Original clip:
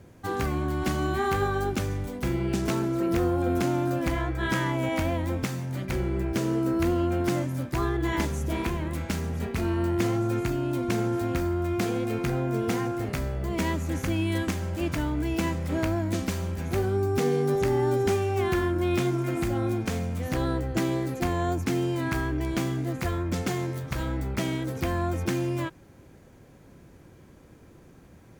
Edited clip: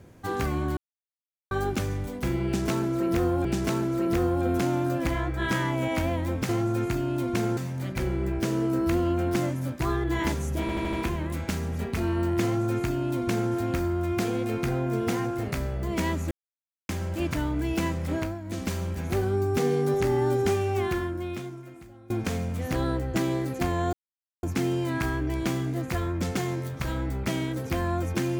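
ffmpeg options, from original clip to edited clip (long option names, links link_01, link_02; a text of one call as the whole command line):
ffmpeg -i in.wav -filter_complex "[0:a]asplit=16[link_01][link_02][link_03][link_04][link_05][link_06][link_07][link_08][link_09][link_10][link_11][link_12][link_13][link_14][link_15][link_16];[link_01]atrim=end=0.77,asetpts=PTS-STARTPTS,afade=type=out:start_time=0.766:duration=0.004:curve=hsin[link_17];[link_02]atrim=start=0.77:end=1.51,asetpts=PTS-STARTPTS,volume=0[link_18];[link_03]atrim=start=1.51:end=3.452,asetpts=PTS-STARTPTS,afade=type=in:duration=0.004:curve=hsin[link_19];[link_04]atrim=start=2.458:end=5.502[link_20];[link_05]atrim=start=10.038:end=11.122[link_21];[link_06]atrim=start=5.498:end=8.622[link_22];[link_07]atrim=start=8.538:end=8.622[link_23];[link_08]atrim=start=8.538:end=8.622[link_24];[link_09]atrim=start=8.538:end=8.622[link_25];[link_10]atrim=start=8.538:end=13.92,asetpts=PTS-STARTPTS,afade=type=out:start_time=5.378:duration=0.004:curve=hsin[link_26];[link_11]atrim=start=13.92:end=14.5,asetpts=PTS-STARTPTS,volume=0[link_27];[link_12]atrim=start=14.5:end=16,asetpts=PTS-STARTPTS,afade=type=in:duration=0.004:curve=hsin,afade=type=out:start_time=1.21:duration=0.29:silence=0.298538[link_28];[link_13]atrim=start=16:end=16.04,asetpts=PTS-STARTPTS,volume=-10.5dB[link_29];[link_14]atrim=start=16.04:end=19.71,asetpts=PTS-STARTPTS,afade=type=in:duration=0.29:silence=0.298538,afade=type=out:start_time=2.3:duration=1.37:curve=qua:silence=0.0668344[link_30];[link_15]atrim=start=19.71:end=21.54,asetpts=PTS-STARTPTS,afade=type=in:duration=0.004:curve=hsin:silence=0.0668344,afade=type=out:start_time=1.826:duration=0.004:curve=hsin,apad=pad_dur=0.5[link_31];[link_16]atrim=start=21.54,asetpts=PTS-STARTPTS,afade=type=in:duration=0.004:curve=hsin[link_32];[link_17][link_18][link_19]concat=n=3:v=0:a=1[link_33];[link_33][link_20]acrossfade=duration=0.004:curve1=hsin:curve2=hsin[link_34];[link_34][link_21]acrossfade=duration=0.004:curve1=hsin:curve2=hsin[link_35];[link_35][link_22]acrossfade=duration=0.004:curve1=hsin:curve2=hsin[link_36];[link_36][link_23]acrossfade=duration=0.004:curve1=hsin:curve2=hsin[link_37];[link_37][link_24]acrossfade=duration=0.004:curve1=hsin:curve2=hsin[link_38];[link_38][link_25]acrossfade=duration=0.004:curve1=hsin:curve2=hsin[link_39];[link_26][link_27][link_28][link_29][link_30][link_31][link_32]concat=n=7:v=0:a=1[link_40];[link_39][link_40]acrossfade=duration=0.004:curve1=hsin:curve2=hsin" out.wav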